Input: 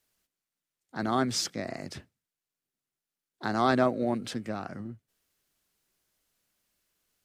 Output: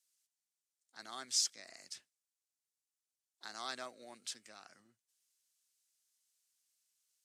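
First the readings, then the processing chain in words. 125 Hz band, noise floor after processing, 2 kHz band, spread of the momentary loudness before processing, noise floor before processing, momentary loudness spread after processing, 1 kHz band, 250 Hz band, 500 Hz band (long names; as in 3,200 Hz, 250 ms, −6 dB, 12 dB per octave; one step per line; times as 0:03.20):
−36.5 dB, below −85 dBFS, −14.0 dB, 18 LU, below −85 dBFS, 22 LU, −19.0 dB, −30.5 dB, −24.0 dB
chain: resonant band-pass 7,400 Hz, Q 1.2
level +1 dB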